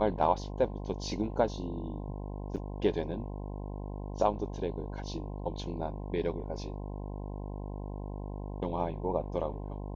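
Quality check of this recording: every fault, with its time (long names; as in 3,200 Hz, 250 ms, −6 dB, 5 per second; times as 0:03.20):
mains buzz 50 Hz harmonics 21 −39 dBFS
0:02.56–0:02.57: drop-out 7 ms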